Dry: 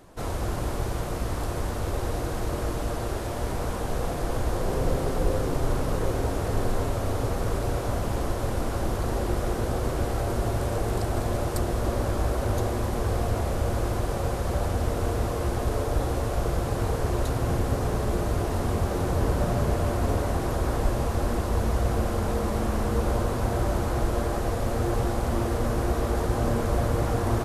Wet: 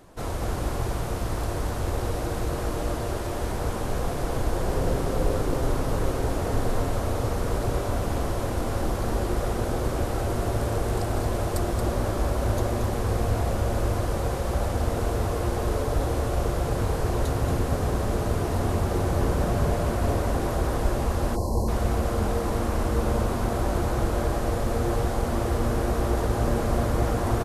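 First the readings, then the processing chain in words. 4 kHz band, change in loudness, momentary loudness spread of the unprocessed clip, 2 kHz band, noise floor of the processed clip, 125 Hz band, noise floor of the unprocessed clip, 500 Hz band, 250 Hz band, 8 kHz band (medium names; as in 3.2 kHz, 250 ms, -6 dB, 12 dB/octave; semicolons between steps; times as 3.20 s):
+1.0 dB, +1.0 dB, 4 LU, +1.0 dB, -29 dBFS, +0.5 dB, -30 dBFS, +1.0 dB, +1.0 dB, +1.0 dB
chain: delay 228 ms -6.5 dB; time-frequency box 21.36–21.68 s, 1.1–4 kHz -26 dB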